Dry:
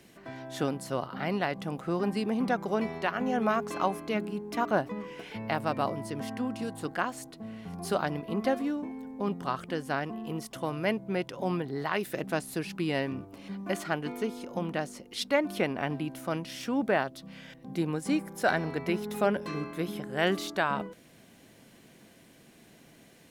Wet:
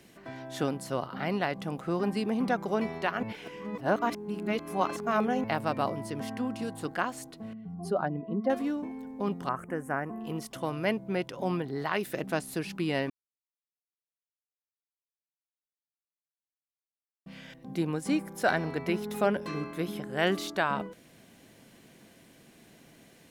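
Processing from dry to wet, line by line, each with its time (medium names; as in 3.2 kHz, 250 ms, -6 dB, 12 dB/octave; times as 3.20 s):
3.23–5.44 s: reverse
7.53–8.50 s: spectral contrast enhancement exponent 1.7
9.49–10.21 s: Chebyshev band-stop 1.8–8.1 kHz
13.10–17.26 s: mute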